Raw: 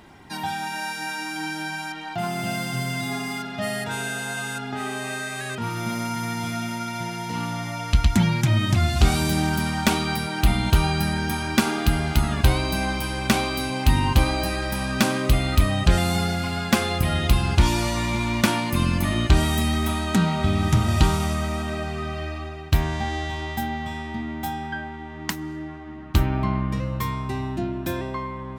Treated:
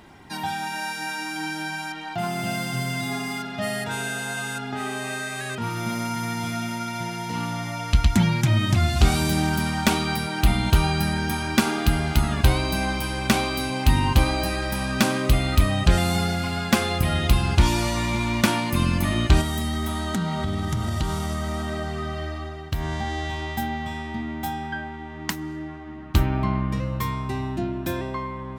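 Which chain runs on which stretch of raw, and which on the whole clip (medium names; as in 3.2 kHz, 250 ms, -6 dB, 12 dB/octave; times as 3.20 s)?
19.41–23.25 s: compression 3:1, threshold -23 dBFS + band-stop 2.5 kHz, Q 8.2
whole clip: none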